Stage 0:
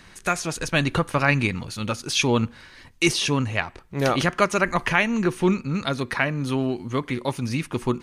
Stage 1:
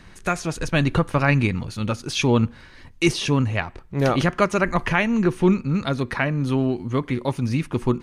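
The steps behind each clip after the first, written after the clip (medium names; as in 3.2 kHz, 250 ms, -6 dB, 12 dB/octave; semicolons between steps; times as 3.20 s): tilt EQ -1.5 dB/octave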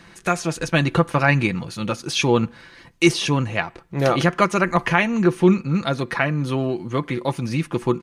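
high-pass 170 Hz 6 dB/octave; comb 5.9 ms, depth 41%; trim +2 dB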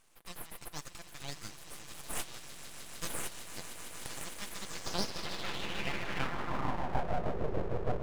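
echo with a slow build-up 152 ms, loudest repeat 8, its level -12.5 dB; band-pass sweep 5.1 kHz -> 240 Hz, 4.50–7.43 s; full-wave rectifier; trim -5.5 dB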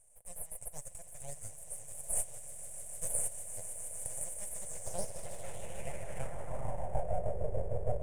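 FFT filter 110 Hz 0 dB, 300 Hz -20 dB, 580 Hz +3 dB, 1.2 kHz -20 dB, 2.1 kHz -14 dB, 4.4 kHz -26 dB, 9 kHz +11 dB, 14 kHz -7 dB; trim +1.5 dB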